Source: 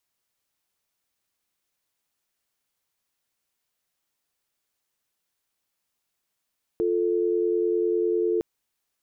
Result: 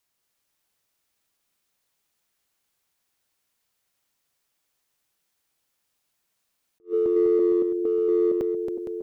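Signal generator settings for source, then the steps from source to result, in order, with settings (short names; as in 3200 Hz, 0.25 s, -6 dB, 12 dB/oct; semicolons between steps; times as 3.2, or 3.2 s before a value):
call progress tone dial tone, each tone -23.5 dBFS 1.61 s
regenerating reverse delay 0.231 s, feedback 69%, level -6 dB; in parallel at -10 dB: overloaded stage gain 23.5 dB; on the sum: attack slew limiter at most 350 dB/s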